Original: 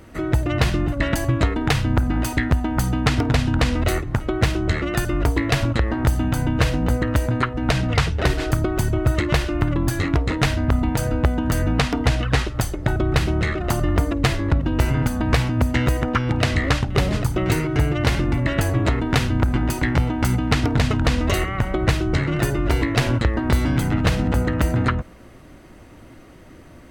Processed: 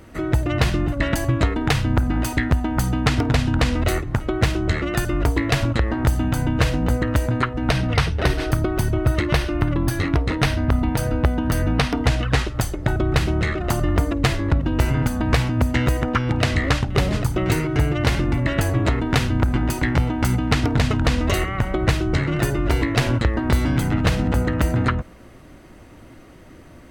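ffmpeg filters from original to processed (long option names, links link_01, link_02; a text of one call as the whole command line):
ffmpeg -i in.wav -filter_complex "[0:a]asettb=1/sr,asplit=3[link_01][link_02][link_03];[link_01]atrim=end=7.704[link_04];[link_02]atrim=start=7.7:end=11.98,asetpts=PTS-STARTPTS,afade=type=in:duration=0.004:curve=qsin,afade=type=out:start_time=4.276:duration=0.004:curve=qsin,bandreject=frequency=7200:width=5.1[link_05];[link_03]atrim=start=11.976[link_06];[link_04][link_05]acrossfade=duration=0.004:curve1=hsin:curve2=qsin[link_07];[link_07][link_06]acrossfade=duration=0.004:curve1=qsin:curve2=hsin" out.wav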